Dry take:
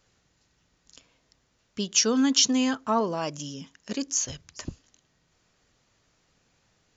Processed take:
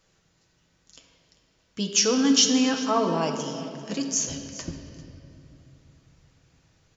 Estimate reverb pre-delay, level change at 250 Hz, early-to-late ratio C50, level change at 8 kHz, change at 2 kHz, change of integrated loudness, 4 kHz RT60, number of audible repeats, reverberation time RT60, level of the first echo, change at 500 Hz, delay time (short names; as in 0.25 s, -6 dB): 6 ms, +2.5 dB, 5.5 dB, n/a, +2.0 dB, +1.5 dB, 2.0 s, 1, 2.9 s, -18.0 dB, +3.5 dB, 0.395 s